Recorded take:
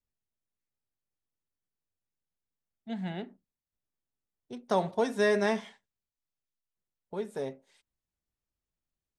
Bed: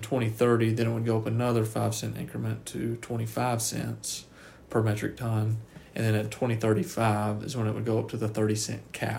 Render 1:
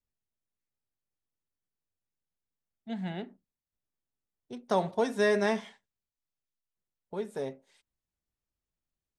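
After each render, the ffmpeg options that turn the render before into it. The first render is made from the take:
-af anull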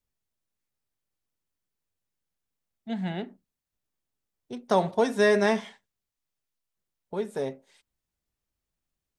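-af "volume=1.68"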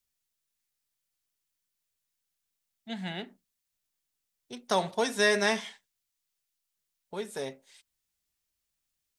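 -af "tiltshelf=f=1500:g=-7"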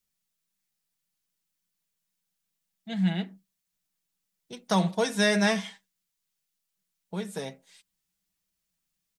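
-af "equalizer=f=190:t=o:w=0.42:g=12.5,aecho=1:1:6.2:0.49"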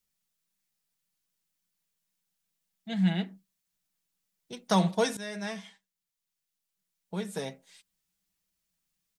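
-filter_complex "[0:a]asplit=2[s0][s1];[s0]atrim=end=5.17,asetpts=PTS-STARTPTS,afade=t=out:st=5.166:d=0.004:c=hsin:silence=0.125893[s2];[s1]atrim=start=5.17,asetpts=PTS-STARTPTS,afade=t=in:d=2.22:silence=0.125893[s3];[s2][s3]concat=n=2:v=0:a=1"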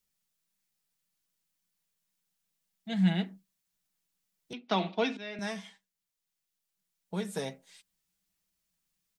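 -filter_complex "[0:a]asettb=1/sr,asplit=3[s0][s1][s2];[s0]atrim=end=4.534[s3];[s1]atrim=start=4.53:end=5.39,asetpts=PTS-STARTPTS,afade=t=in:d=0.004:c=qsin,afade=t=out:st=0.856:d=0.004:c=qsin,highpass=f=250:w=0.5412,highpass=f=250:w=1.3066,equalizer=f=250:t=q:w=4:g=7,equalizer=f=520:t=q:w=4:g=-8,equalizer=f=990:t=q:w=4:g=-5,equalizer=f=1700:t=q:w=4:g=-6,equalizer=f=2500:t=q:w=4:g=7,lowpass=f=3900:w=0.5412,lowpass=f=3900:w=1.3066[s4];[s2]atrim=start=5.386[s5];[s3][s4]acrossfade=d=0.004:c1=hsin:c2=qsin[s6];[s6][s5]acrossfade=d=0.004:c1=qsin:c2=hsin"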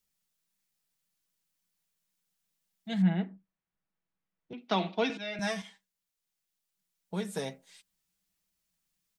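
-filter_complex "[0:a]asettb=1/sr,asplit=3[s0][s1][s2];[s0]atrim=end=3.024[s3];[s1]atrim=start=3.02:end=4.58,asetpts=PTS-STARTPTS,afade=t=in:d=0.004:c=qsin,afade=t=out:st=1.556:d=0.004:c=qsin,lowpass=1700[s4];[s2]atrim=start=4.576[s5];[s3][s4]acrossfade=d=0.004:c1=hsin:c2=qsin[s6];[s6][s5]acrossfade=d=0.004:c1=qsin:c2=hsin,asettb=1/sr,asplit=3[s7][s8][s9];[s7]atrim=end=5.094[s10];[s8]atrim=start=5.09:end=5.62,asetpts=PTS-STARTPTS,afade=t=in:d=0.004:c=qsin,afade=t=out:st=0.526:d=0.004:c=qsin,aecho=1:1:6.2:0.98,atrim=end_sample=23373[s11];[s9]atrim=start=5.616[s12];[s10][s11]acrossfade=d=0.004:c1=hsin:c2=qsin[s13];[s13][s12]acrossfade=d=0.004:c1=qsin:c2=hsin"

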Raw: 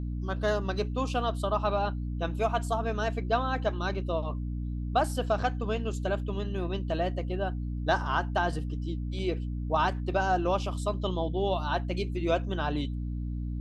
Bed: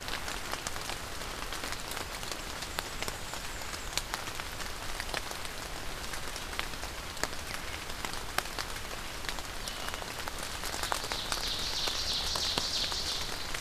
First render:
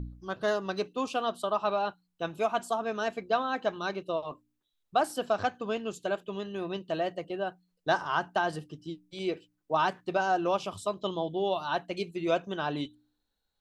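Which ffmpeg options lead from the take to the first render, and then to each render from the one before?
-af "bandreject=f=60:t=h:w=4,bandreject=f=120:t=h:w=4,bandreject=f=180:t=h:w=4,bandreject=f=240:t=h:w=4,bandreject=f=300:t=h:w=4"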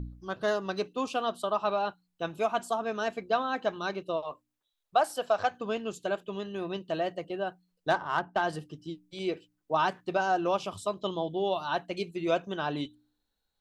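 -filter_complex "[0:a]asettb=1/sr,asplit=3[s0][s1][s2];[s0]atrim=end=4.224[s3];[s1]atrim=start=4.22:end=5.51,asetpts=PTS-STARTPTS,afade=t=in:d=0.004:c=qsin,afade=t=out:st=1.286:d=0.004:c=qsin,lowshelf=f=420:t=q:w=1.5:g=-7[s4];[s2]atrim=start=5.506[s5];[s3][s4]acrossfade=d=0.004:c1=hsin:c2=qsin[s6];[s6][s5]acrossfade=d=0.004:c1=qsin:c2=hsin,asettb=1/sr,asplit=3[s7][s8][s9];[s7]atrim=end=7.904[s10];[s8]atrim=start=7.9:end=8.42,asetpts=PTS-STARTPTS,afade=t=in:d=0.004:c=qsin,afade=t=out:st=0.516:d=0.004:c=qsin,adynamicsmooth=sensitivity=2:basefreq=1700[s11];[s9]atrim=start=8.416[s12];[s10][s11]acrossfade=d=0.004:c1=hsin:c2=qsin[s13];[s13][s12]acrossfade=d=0.004:c1=qsin:c2=hsin"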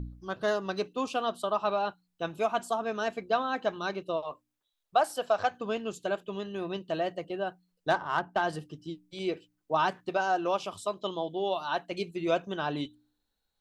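-filter_complex "[0:a]asettb=1/sr,asplit=3[s0][s1][s2];[s0]atrim=end=10.094[s3];[s1]atrim=start=10.09:end=11.92,asetpts=PTS-STARTPTS,afade=t=in:d=0.004:c=qsin,afade=t=out:st=1.826:d=0.004:c=qsin,lowshelf=f=160:g=-11[s4];[s2]atrim=start=11.916[s5];[s3][s4]acrossfade=d=0.004:c1=hsin:c2=qsin[s6];[s6][s5]acrossfade=d=0.004:c1=qsin:c2=hsin"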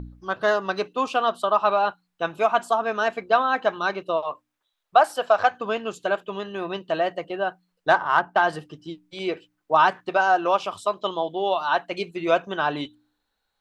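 -af "equalizer=f=1300:w=0.4:g=10.5"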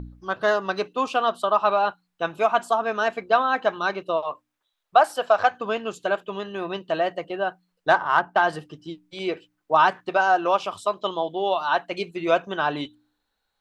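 -af anull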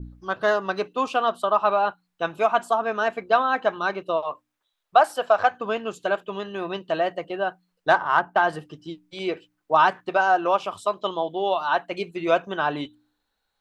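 -af "adynamicequalizer=threshold=0.00794:dfrequency=4900:dqfactor=0.87:tfrequency=4900:tqfactor=0.87:attack=5:release=100:ratio=0.375:range=3:mode=cutabove:tftype=bell"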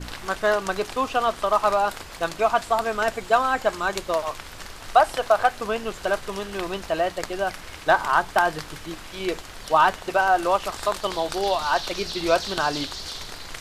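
-filter_complex "[1:a]volume=0.944[s0];[0:a][s0]amix=inputs=2:normalize=0"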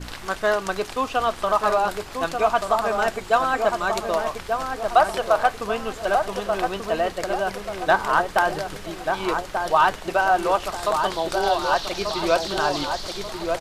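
-filter_complex "[0:a]asplit=2[s0][s1];[s1]adelay=1186,lowpass=f=1200:p=1,volume=0.631,asplit=2[s2][s3];[s3]adelay=1186,lowpass=f=1200:p=1,volume=0.48,asplit=2[s4][s5];[s5]adelay=1186,lowpass=f=1200:p=1,volume=0.48,asplit=2[s6][s7];[s7]adelay=1186,lowpass=f=1200:p=1,volume=0.48,asplit=2[s8][s9];[s9]adelay=1186,lowpass=f=1200:p=1,volume=0.48,asplit=2[s10][s11];[s11]adelay=1186,lowpass=f=1200:p=1,volume=0.48[s12];[s0][s2][s4][s6][s8][s10][s12]amix=inputs=7:normalize=0"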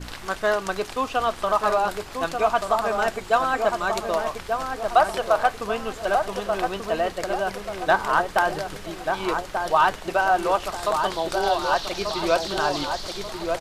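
-af "volume=0.891"

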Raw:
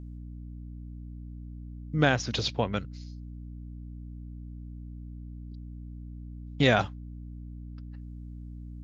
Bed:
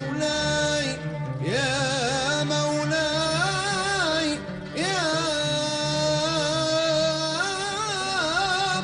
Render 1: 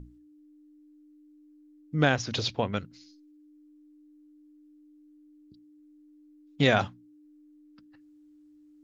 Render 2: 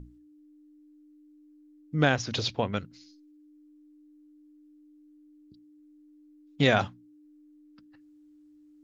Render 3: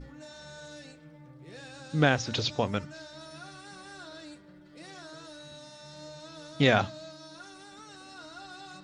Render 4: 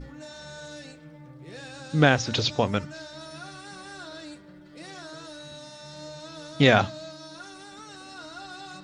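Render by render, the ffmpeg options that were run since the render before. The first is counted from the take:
-af "bandreject=f=60:t=h:w=6,bandreject=f=120:t=h:w=6,bandreject=f=180:t=h:w=6,bandreject=f=240:t=h:w=6"
-af anull
-filter_complex "[1:a]volume=0.075[s0];[0:a][s0]amix=inputs=2:normalize=0"
-af "volume=1.68"

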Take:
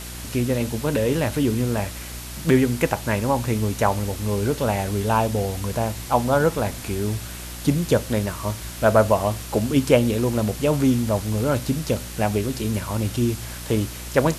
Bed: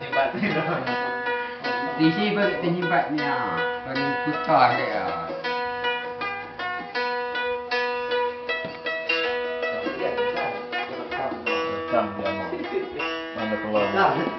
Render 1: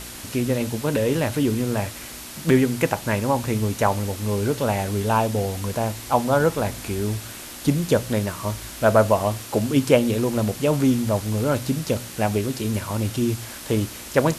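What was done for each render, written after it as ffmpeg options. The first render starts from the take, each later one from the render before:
-af "bandreject=f=60:t=h:w=4,bandreject=f=120:t=h:w=4,bandreject=f=180:t=h:w=4"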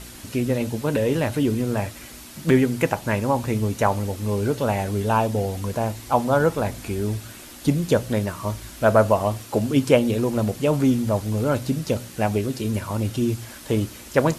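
-af "afftdn=nr=6:nf=-38"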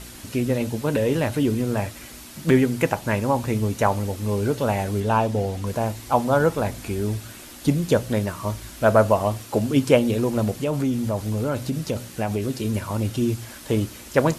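-filter_complex "[0:a]asettb=1/sr,asplit=3[s0][s1][s2];[s0]atrim=end=5.004[s3];[s1]atrim=start=5:end=5.67,asetpts=PTS-STARTPTS,afade=t=in:d=0.004:c=qsin,afade=t=out:st=0.666:d=0.004:c=qsin,highshelf=f=9200:g=-9[s4];[s2]atrim=start=5.666[s5];[s3][s4]acrossfade=d=0.004:c1=hsin:c2=qsin[s6];[s6][s5]acrossfade=d=0.004:c1=qsin:c2=hsin,asettb=1/sr,asplit=3[s7][s8][s9];[s7]atrim=end=10.614[s10];[s8]atrim=start=10.61:end=12.42,asetpts=PTS-STARTPTS,afade=t=in:d=0.004:c=qsin,afade=t=out:st=1.806:d=0.004:c=qsin,acompressor=threshold=0.0891:ratio=2.5:attack=3.2:release=140:knee=1:detection=peak[s11];[s9]atrim=start=12.416[s12];[s10][s11]acrossfade=d=0.004:c1=hsin:c2=qsin[s13];[s13][s12]acrossfade=d=0.004:c1=qsin:c2=hsin"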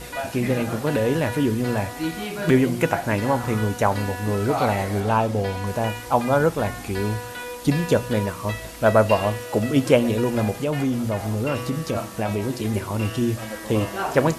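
-filter_complex "[1:a]volume=0.422[s0];[0:a][s0]amix=inputs=2:normalize=0"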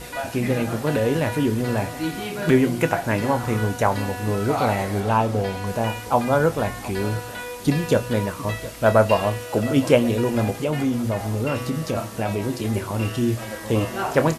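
-filter_complex "[0:a]asplit=2[s0][s1];[s1]adelay=26,volume=0.237[s2];[s0][s2]amix=inputs=2:normalize=0,aecho=1:1:715:0.126"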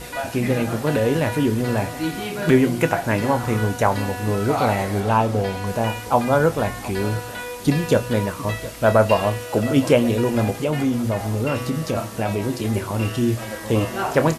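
-af "volume=1.19,alimiter=limit=0.708:level=0:latency=1"

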